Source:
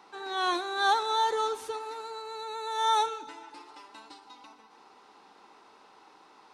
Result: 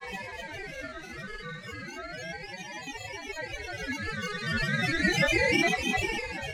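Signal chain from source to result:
extreme stretch with random phases 4.6×, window 0.50 s, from 0:01.78
granular cloud, grains 20 per second, pitch spread up and down by 7 semitones
ring modulator whose carrier an LFO sweeps 1,100 Hz, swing 25%, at 0.34 Hz
level +3.5 dB

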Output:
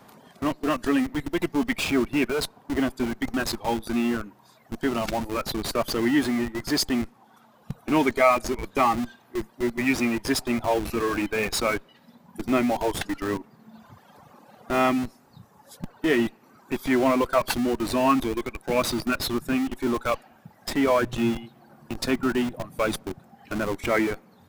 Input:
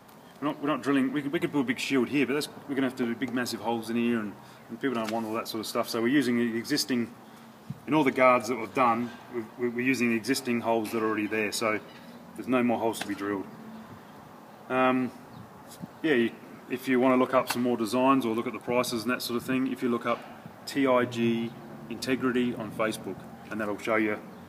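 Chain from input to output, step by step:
reverb reduction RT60 1.9 s
in parallel at −4 dB: comparator with hysteresis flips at −33 dBFS
on the sum: level +1.5 dB

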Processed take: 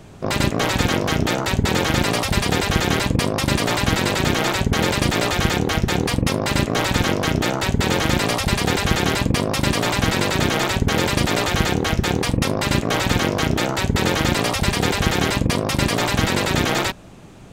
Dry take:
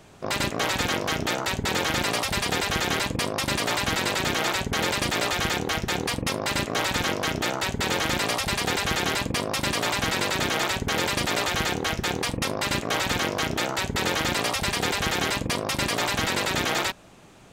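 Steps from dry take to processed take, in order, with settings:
low-shelf EQ 360 Hz +9.5 dB
level +3 dB

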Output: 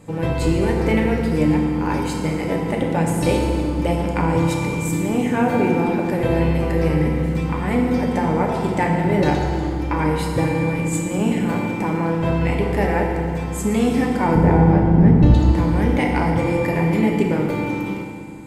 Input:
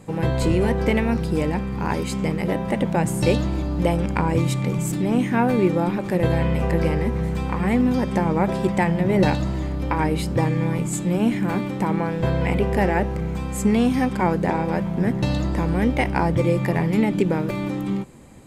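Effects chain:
0:14.35–0:15.34: RIAA equalisation playback
feedback delay network reverb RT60 2.3 s, low-frequency decay 1.25×, high-frequency decay 0.7×, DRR −0.5 dB
level −1.5 dB

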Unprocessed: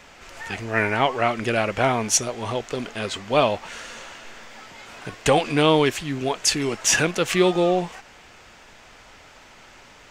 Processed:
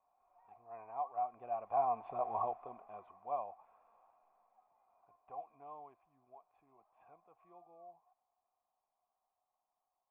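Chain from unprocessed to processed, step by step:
source passing by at 0:02.27, 13 m/s, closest 2.2 metres
formant resonators in series a
level +5.5 dB

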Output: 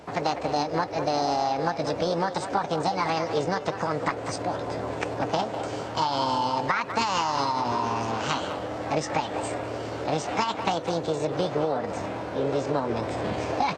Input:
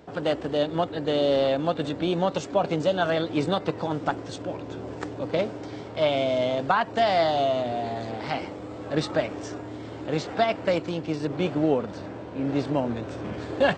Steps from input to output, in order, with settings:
formants moved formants +6 semitones
downward compressor 6 to 1, threshold −27 dBFS, peak gain reduction 10.5 dB
far-end echo of a speakerphone 200 ms, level −9 dB
level +4.5 dB

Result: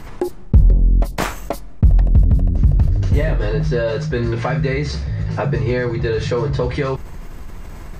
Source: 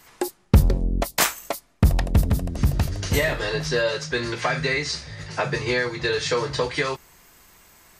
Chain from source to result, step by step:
spectral tilt −4 dB per octave
envelope flattener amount 50%
level −12 dB

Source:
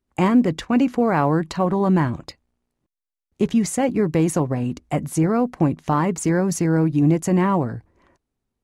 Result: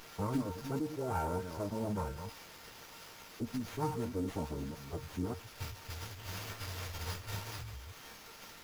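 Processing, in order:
delay that plays each chunk backwards 176 ms, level −9 dB
noise gate −32 dBFS, range −19 dB
time-frequency box erased 0:05.34–0:08.23, 200–8,500 Hz
background noise blue −32 dBFS
tuned comb filter 820 Hz, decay 0.28 s, mix 90%
phase-vocoder pitch shift with formants kept −10 semitones
linear-phase brick-wall band-stop 1,600–4,400 Hz
windowed peak hold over 5 samples
level +1 dB

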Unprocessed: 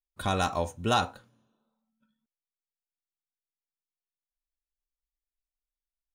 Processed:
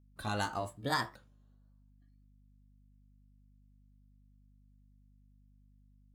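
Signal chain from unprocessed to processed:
pitch shifter swept by a sawtooth +5 semitones, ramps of 1,154 ms
mains hum 50 Hz, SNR 20 dB
level −6 dB

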